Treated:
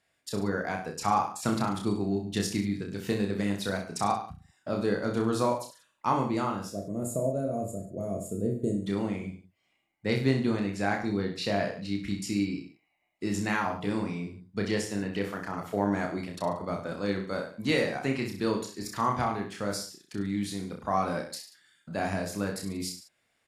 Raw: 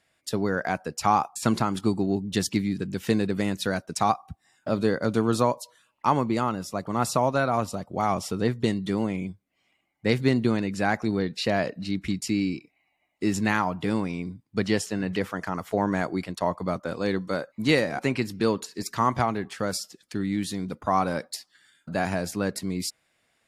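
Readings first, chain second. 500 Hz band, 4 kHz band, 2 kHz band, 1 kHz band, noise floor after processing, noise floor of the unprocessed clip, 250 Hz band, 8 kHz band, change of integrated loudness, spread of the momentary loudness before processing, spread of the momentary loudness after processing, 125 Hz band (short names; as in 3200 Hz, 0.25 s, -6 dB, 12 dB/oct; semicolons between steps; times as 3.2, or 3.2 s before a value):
-3.5 dB, -4.0 dB, -4.0 dB, -4.5 dB, -74 dBFS, -72 dBFS, -3.5 dB, -4.0 dB, -4.0 dB, 8 LU, 9 LU, -3.5 dB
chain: spectral gain 6.72–8.85, 710–6500 Hz -23 dB; reverse bouncing-ball echo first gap 30 ms, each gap 1.1×, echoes 5; gain -6 dB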